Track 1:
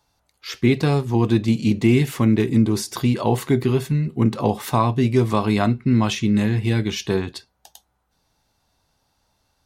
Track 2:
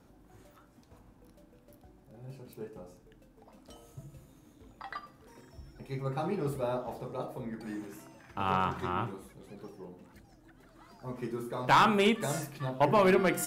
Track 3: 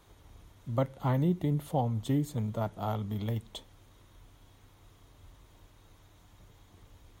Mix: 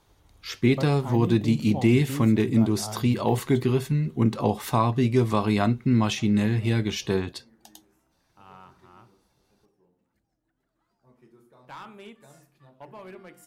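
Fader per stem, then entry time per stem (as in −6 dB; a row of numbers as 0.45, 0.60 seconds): −3.5, −19.5, −4.0 decibels; 0.00, 0.00, 0.00 seconds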